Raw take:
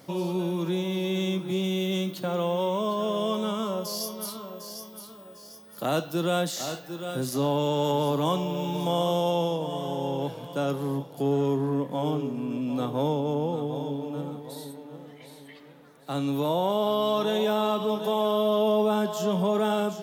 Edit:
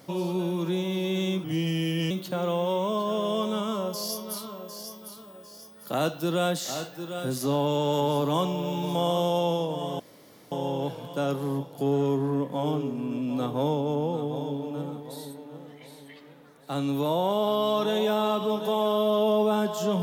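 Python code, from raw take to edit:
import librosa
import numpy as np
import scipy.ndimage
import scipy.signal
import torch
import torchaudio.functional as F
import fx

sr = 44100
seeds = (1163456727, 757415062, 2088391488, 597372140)

y = fx.edit(x, sr, fx.speed_span(start_s=1.44, length_s=0.58, speed=0.87),
    fx.insert_room_tone(at_s=9.91, length_s=0.52), tone=tone)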